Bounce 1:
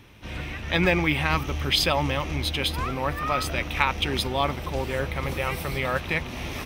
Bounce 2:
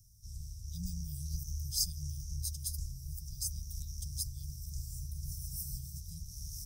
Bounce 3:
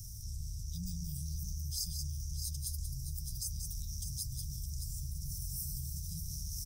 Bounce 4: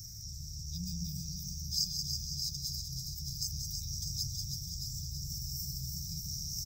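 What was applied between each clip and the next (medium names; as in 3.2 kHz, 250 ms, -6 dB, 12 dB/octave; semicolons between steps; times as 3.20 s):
Chebyshev band-stop 190–5400 Hz, order 5; amplifier tone stack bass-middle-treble 10-0-10; trim +1.5 dB
multi-tap echo 183/613 ms -10/-12 dB; level flattener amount 70%; trim -7 dB
static phaser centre 3 kHz, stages 6; feedback delay 325 ms, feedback 58%, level -6 dB; reverberation RT60 0.40 s, pre-delay 121 ms, DRR 16 dB; trim +3.5 dB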